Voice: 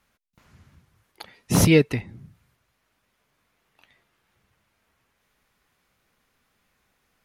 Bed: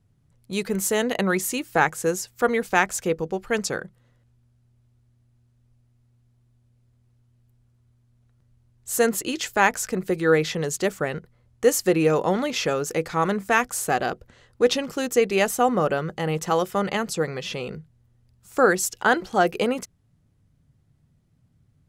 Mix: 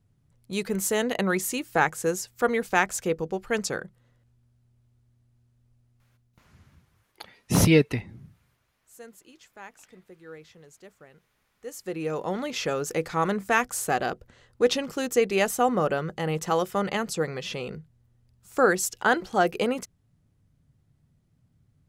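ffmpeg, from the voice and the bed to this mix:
-filter_complex "[0:a]adelay=6000,volume=0.794[s0];[1:a]volume=10.6,afade=t=out:st=6.02:d=0.72:silence=0.0707946,afade=t=in:st=11.6:d=1.3:silence=0.0707946[s1];[s0][s1]amix=inputs=2:normalize=0"

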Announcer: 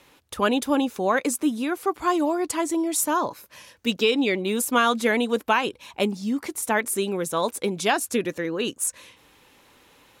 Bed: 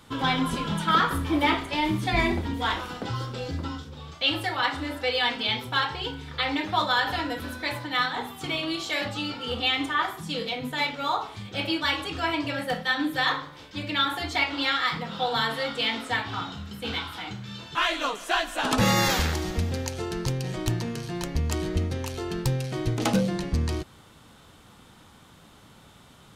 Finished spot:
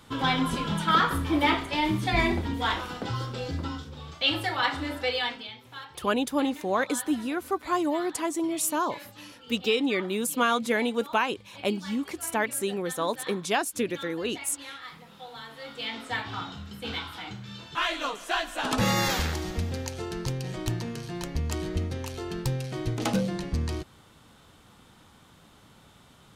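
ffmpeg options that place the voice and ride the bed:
-filter_complex "[0:a]adelay=5650,volume=0.631[s0];[1:a]volume=4.73,afade=t=out:st=5.02:d=0.49:silence=0.149624,afade=t=in:st=15.5:d=0.76:silence=0.199526[s1];[s0][s1]amix=inputs=2:normalize=0"

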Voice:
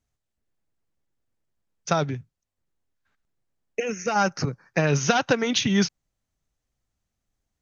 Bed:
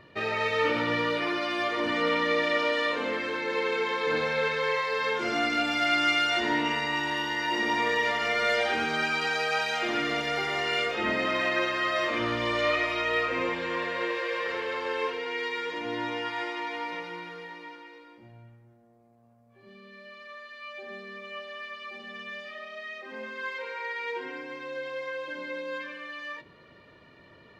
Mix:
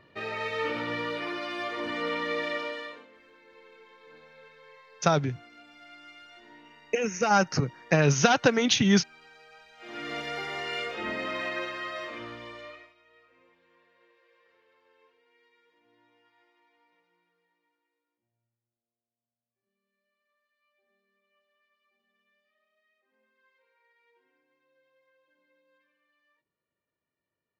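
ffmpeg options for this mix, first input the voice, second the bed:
-filter_complex "[0:a]adelay=3150,volume=1[s0];[1:a]volume=5.96,afade=t=out:st=2.47:d=0.6:silence=0.0891251,afade=t=in:st=9.77:d=0.4:silence=0.0944061,afade=t=out:st=11.43:d=1.51:silence=0.0354813[s1];[s0][s1]amix=inputs=2:normalize=0"

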